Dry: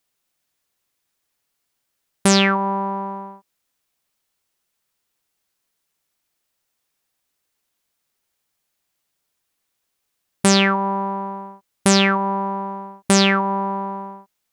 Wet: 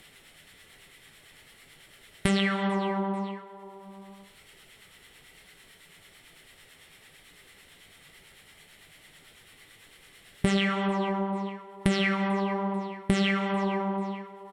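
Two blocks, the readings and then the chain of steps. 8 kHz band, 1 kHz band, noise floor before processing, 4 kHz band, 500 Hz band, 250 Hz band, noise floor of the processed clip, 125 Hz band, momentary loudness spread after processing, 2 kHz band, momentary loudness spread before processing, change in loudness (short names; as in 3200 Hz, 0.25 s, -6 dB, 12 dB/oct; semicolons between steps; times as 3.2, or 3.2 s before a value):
-19.5 dB, -10.5 dB, -76 dBFS, -11.5 dB, -7.5 dB, -6.5 dB, -56 dBFS, -5.5 dB, 17 LU, -8.5 dB, 16 LU, -9.5 dB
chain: notch 4800 Hz, Q 9; feedback echo 0.441 s, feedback 28%, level -23.5 dB; flange 1.1 Hz, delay 5.4 ms, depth 6.7 ms, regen -48%; upward compressor, threshold -34 dBFS; harmonic tremolo 9 Hz, depth 50%, crossover 820 Hz; thirty-one-band EQ 160 Hz +8 dB, 400 Hz +6 dB, 1000 Hz -5 dB, 2000 Hz +10 dB, 3150 Hz +6 dB, 6300 Hz -12 dB; non-linear reverb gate 0.34 s falling, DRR 8 dB; compressor 4:1, threshold -29 dBFS, peak gain reduction 14 dB; LPF 9100 Hz 12 dB/oct; low shelf 72 Hz +11.5 dB; gain +4 dB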